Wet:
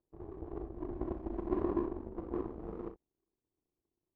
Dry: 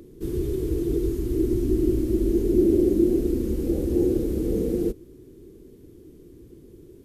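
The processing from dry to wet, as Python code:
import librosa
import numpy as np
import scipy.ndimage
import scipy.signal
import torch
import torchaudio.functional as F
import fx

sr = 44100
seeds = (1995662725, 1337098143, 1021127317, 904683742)

y = fx.stretch_vocoder(x, sr, factor=0.59)
y = fx.filter_lfo_lowpass(y, sr, shape='saw_up', hz=0.62, low_hz=810.0, high_hz=1900.0, q=2.1)
y = fx.power_curve(y, sr, exponent=2.0)
y = fx.room_early_taps(y, sr, ms=(37, 61), db=(-10.0, -13.5))
y = F.gain(torch.from_numpy(y), -7.5).numpy()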